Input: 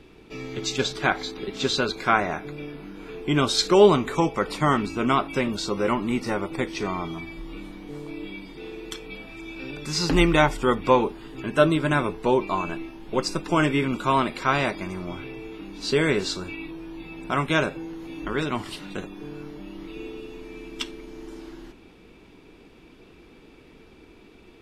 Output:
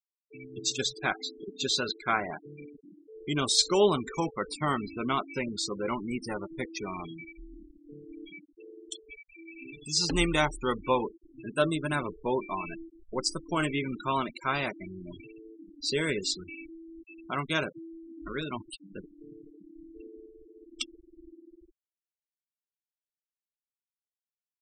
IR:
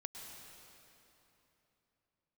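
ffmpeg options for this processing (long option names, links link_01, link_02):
-af "aemphasis=mode=production:type=75fm,afftfilt=real='re*gte(hypot(re,im),0.0708)':imag='im*gte(hypot(re,im),0.0708)':win_size=1024:overlap=0.75,volume=-7.5dB"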